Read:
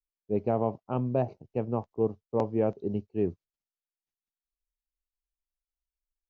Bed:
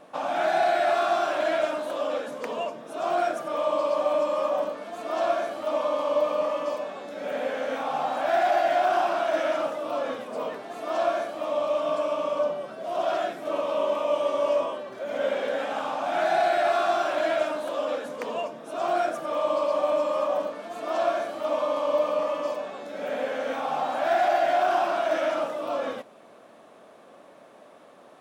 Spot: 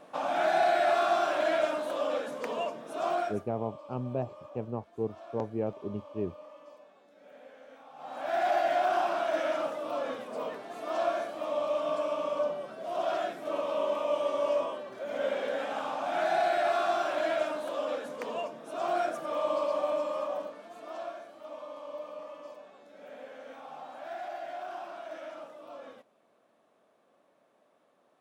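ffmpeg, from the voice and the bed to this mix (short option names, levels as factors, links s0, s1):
-filter_complex "[0:a]adelay=3000,volume=0.531[s0];[1:a]volume=6.31,afade=t=out:st=3.04:d=0.43:silence=0.0944061,afade=t=in:st=7.96:d=0.54:silence=0.11885,afade=t=out:st=19.59:d=1.62:silence=0.237137[s1];[s0][s1]amix=inputs=2:normalize=0"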